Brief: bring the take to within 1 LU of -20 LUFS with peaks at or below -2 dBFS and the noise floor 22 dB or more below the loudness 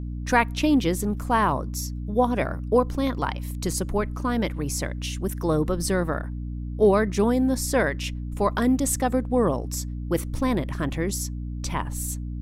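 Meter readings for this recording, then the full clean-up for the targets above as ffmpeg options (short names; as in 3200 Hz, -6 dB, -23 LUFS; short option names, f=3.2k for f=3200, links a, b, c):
hum 60 Hz; harmonics up to 300 Hz; hum level -29 dBFS; loudness -25.0 LUFS; peak -6.0 dBFS; loudness target -20.0 LUFS
-> -af "bandreject=f=60:t=h:w=6,bandreject=f=120:t=h:w=6,bandreject=f=180:t=h:w=6,bandreject=f=240:t=h:w=6,bandreject=f=300:t=h:w=6"
-af "volume=5dB,alimiter=limit=-2dB:level=0:latency=1"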